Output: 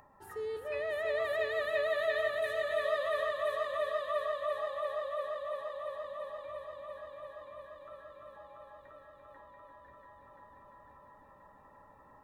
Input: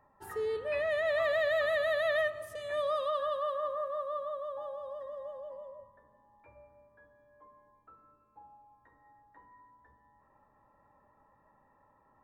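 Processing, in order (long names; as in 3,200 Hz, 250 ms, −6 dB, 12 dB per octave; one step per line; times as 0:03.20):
upward compression, threshold −48 dBFS
on a send: echo machine with several playback heads 343 ms, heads all three, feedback 65%, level −7 dB
on the sum: level −4.5 dB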